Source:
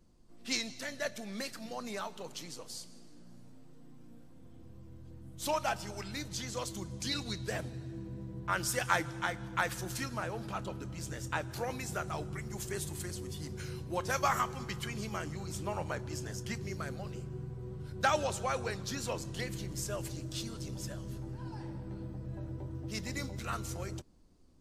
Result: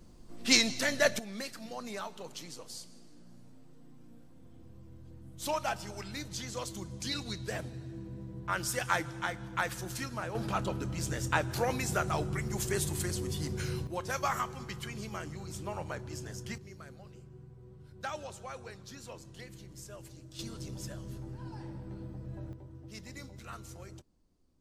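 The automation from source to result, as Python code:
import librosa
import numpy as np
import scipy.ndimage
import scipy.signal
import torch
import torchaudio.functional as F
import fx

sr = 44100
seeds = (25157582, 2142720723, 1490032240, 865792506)

y = fx.gain(x, sr, db=fx.steps((0.0, 10.0), (1.19, -0.5), (10.35, 6.0), (13.87, -2.0), (16.58, -10.0), (20.39, -1.0), (22.53, -8.0)))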